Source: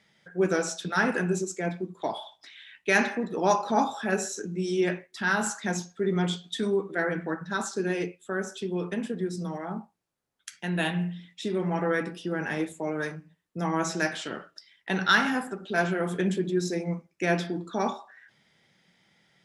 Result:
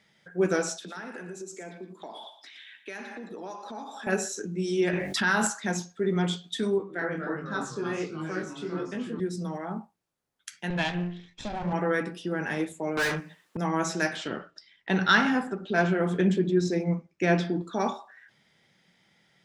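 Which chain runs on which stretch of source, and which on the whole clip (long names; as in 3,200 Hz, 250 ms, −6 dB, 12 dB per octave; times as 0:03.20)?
0:00.77–0:04.07: Butterworth high-pass 190 Hz + downward compressor 5 to 1, threshold −38 dBFS + multi-tap delay 99/117 ms −17.5/−11.5 dB
0:04.93–0:05.47: hum removal 48.04 Hz, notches 18 + envelope flattener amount 70%
0:06.78–0:09.20: high-shelf EQ 9,300 Hz −11 dB + delay with pitch and tempo change per echo 217 ms, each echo −2 semitones, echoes 3, each echo −6 dB + chorus effect 1.4 Hz, delay 19 ms, depth 5.6 ms
0:10.70–0:11.73: lower of the sound and its delayed copy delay 1.2 ms + low-pass filter 6,900 Hz 24 dB per octave
0:12.97–0:13.57: mid-hump overdrive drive 31 dB, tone 6,600 Hz, clips at −19.5 dBFS + expander for the loud parts, over −35 dBFS
0:14.16–0:17.62: low-pass filter 6,300 Hz + low-shelf EQ 440 Hz +4.5 dB
whole clip: no processing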